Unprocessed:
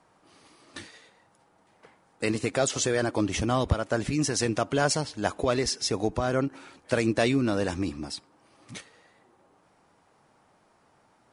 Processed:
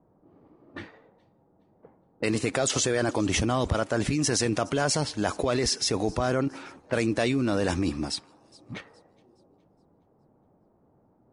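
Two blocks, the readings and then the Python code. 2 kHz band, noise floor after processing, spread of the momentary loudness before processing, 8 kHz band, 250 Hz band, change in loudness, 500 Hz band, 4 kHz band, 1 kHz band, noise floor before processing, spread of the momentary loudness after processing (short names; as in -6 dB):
+0.5 dB, -65 dBFS, 20 LU, +2.5 dB, +0.5 dB, +0.5 dB, 0.0 dB, +2.0 dB, 0.0 dB, -64 dBFS, 18 LU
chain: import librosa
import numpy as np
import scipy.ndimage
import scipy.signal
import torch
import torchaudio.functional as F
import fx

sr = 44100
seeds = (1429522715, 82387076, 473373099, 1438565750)

p1 = fx.over_compress(x, sr, threshold_db=-30.0, ratio=-1.0)
p2 = x + (p1 * 10.0 ** (2.5 / 20.0))
p3 = fx.env_lowpass(p2, sr, base_hz=390.0, full_db=-21.5)
p4 = fx.echo_wet_highpass(p3, sr, ms=417, feedback_pct=35, hz=3700.0, wet_db=-22.0)
y = p4 * 10.0 ** (-4.5 / 20.0)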